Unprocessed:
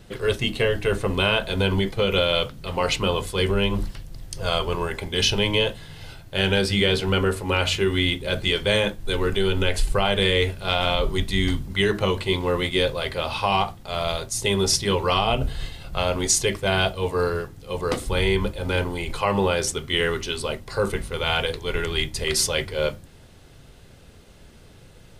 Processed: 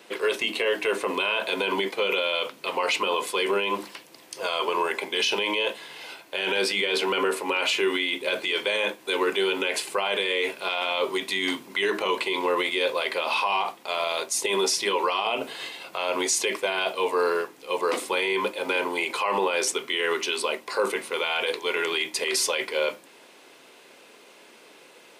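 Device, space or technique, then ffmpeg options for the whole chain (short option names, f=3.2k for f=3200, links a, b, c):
laptop speaker: -af "highpass=f=300:w=0.5412,highpass=f=300:w=1.3066,equalizer=f=1k:t=o:w=0.23:g=8,equalizer=f=2.4k:t=o:w=0.48:g=7,alimiter=limit=-17dB:level=0:latency=1:release=30,volume=2dB"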